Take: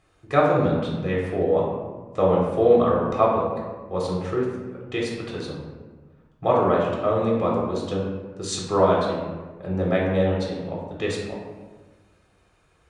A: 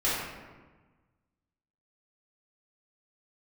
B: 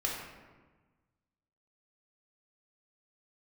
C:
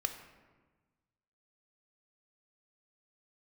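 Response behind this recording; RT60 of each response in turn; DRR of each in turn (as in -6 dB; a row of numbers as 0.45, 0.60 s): B; 1.3, 1.3, 1.3 s; -10.5, -3.5, 6.0 dB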